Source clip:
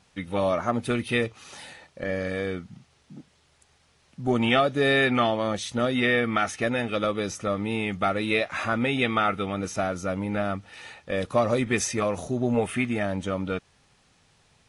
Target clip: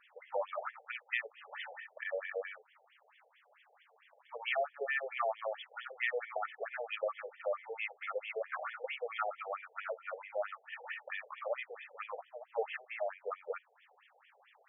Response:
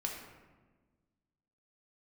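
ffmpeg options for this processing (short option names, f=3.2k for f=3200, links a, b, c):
-filter_complex "[0:a]asplit=2[a][b];[1:a]atrim=start_sample=2205,atrim=end_sample=3087[c];[b][c]afir=irnorm=-1:irlink=0,volume=-17.5dB[d];[a][d]amix=inputs=2:normalize=0,acompressor=threshold=-36dB:ratio=3,afftfilt=real='re*between(b*sr/1024,570*pow(2500/570,0.5+0.5*sin(2*PI*4.5*pts/sr))/1.41,570*pow(2500/570,0.5+0.5*sin(2*PI*4.5*pts/sr))*1.41)':imag='im*between(b*sr/1024,570*pow(2500/570,0.5+0.5*sin(2*PI*4.5*pts/sr))/1.41,570*pow(2500/570,0.5+0.5*sin(2*PI*4.5*pts/sr))*1.41)':win_size=1024:overlap=0.75,volume=4.5dB"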